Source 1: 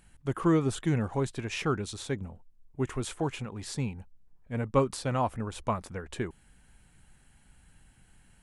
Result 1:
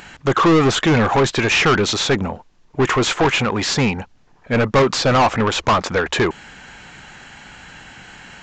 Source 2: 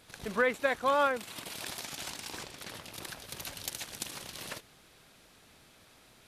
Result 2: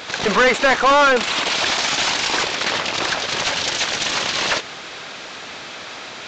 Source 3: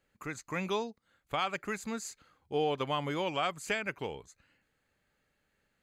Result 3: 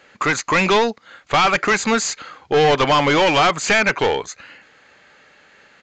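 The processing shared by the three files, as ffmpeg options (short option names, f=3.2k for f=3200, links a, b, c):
-filter_complex "[0:a]asplit=2[a][b];[b]highpass=f=720:p=1,volume=30dB,asoftclip=type=tanh:threshold=-12.5dB[c];[a][c]amix=inputs=2:normalize=0,lowpass=f=3.8k:p=1,volume=-6dB,aresample=16000,aresample=44100,volume=6dB"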